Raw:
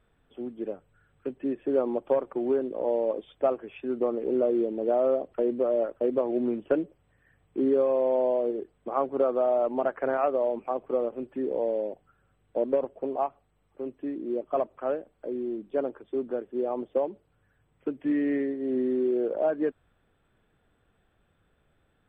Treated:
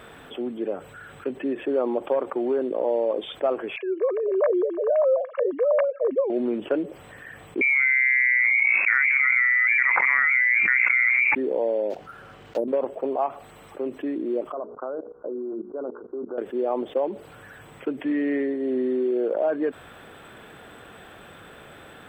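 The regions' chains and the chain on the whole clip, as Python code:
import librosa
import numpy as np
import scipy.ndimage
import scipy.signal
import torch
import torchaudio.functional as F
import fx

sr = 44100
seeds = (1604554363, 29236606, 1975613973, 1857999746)

y = fx.chain(x, sr, fx.sine_speech(),
    fx.comb(ms=1.8, depth=0.67), at=(3.76, 6.3))
y = fx.chain(y, sr, fx.hum_notches(base_hz=60, count=9),
    fx.freq_invert(carrier_hz=2600),
    fx.env_flatten(amount_pct=100), at=(7.61, 11.35))
y = fx.chain(y, sr, fx.block_float(bits=5),
    fx.env_lowpass_down(base_hz=380.0, full_db=-22.5),
    fx.resample_linear(factor=4), at=(11.9, 12.68))
y = fx.chain(y, sr, fx.hum_notches(base_hz=60, count=8),
    fx.level_steps(step_db=20),
    fx.cheby_ripple(hz=1500.0, ripple_db=3), at=(14.52, 16.38))
y = fx.highpass(y, sr, hz=370.0, slope=6)
y = fx.env_flatten(y, sr, amount_pct=50)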